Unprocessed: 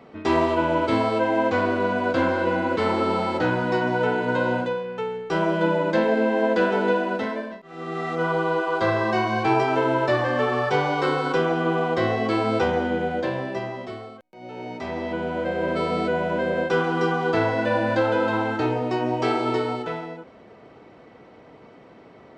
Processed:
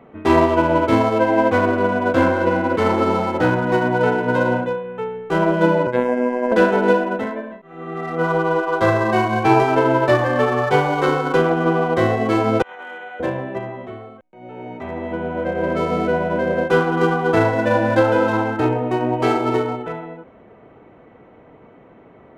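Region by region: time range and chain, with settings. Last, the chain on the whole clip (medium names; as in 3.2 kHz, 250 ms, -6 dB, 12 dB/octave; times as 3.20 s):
5.87–6.52 s: low-pass 2.7 kHz + robot voice 124 Hz
12.62–13.20 s: high-pass 1.2 kHz + compressor with a negative ratio -35 dBFS, ratio -0.5
whole clip: local Wiener filter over 9 samples; bass shelf 63 Hz +7.5 dB; upward expansion 1.5:1, over -29 dBFS; trim +7 dB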